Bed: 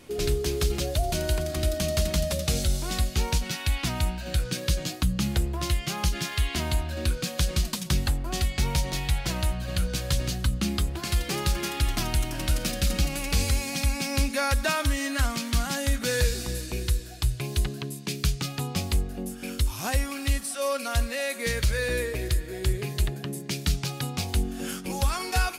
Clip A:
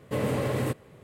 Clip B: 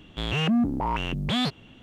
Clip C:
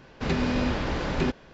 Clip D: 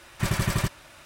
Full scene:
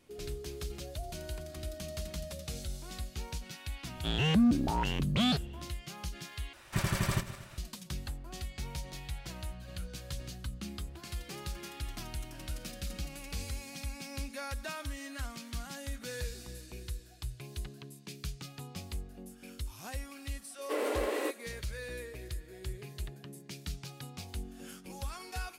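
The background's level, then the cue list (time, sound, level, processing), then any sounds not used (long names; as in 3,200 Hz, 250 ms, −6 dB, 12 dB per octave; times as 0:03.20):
bed −14.5 dB
0:03.87: mix in B −2 dB + phaser whose notches keep moving one way rising 1.6 Hz
0:06.53: overwrite with D −5.5 dB + feedback delay that plays each chunk backwards 118 ms, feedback 52%, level −13 dB
0:20.58: mix in A −2.5 dB + Butterworth high-pass 290 Hz 72 dB per octave
not used: C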